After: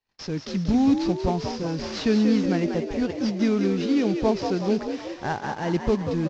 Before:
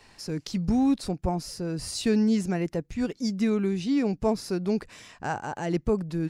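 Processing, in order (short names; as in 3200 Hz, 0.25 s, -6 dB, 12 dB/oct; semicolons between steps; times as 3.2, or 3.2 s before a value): CVSD 32 kbps; frequency-shifting echo 0.186 s, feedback 55%, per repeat +57 Hz, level -7 dB; gate -50 dBFS, range -36 dB; gain +2.5 dB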